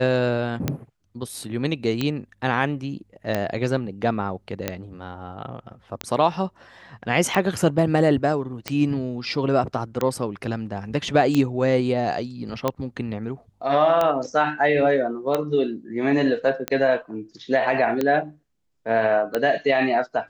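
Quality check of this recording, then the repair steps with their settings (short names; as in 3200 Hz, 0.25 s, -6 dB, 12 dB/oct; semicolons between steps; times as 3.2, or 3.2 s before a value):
tick 45 rpm -9 dBFS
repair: de-click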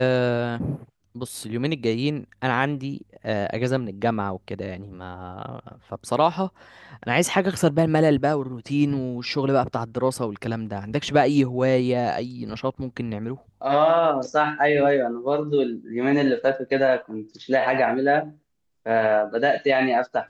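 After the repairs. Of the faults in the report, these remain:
none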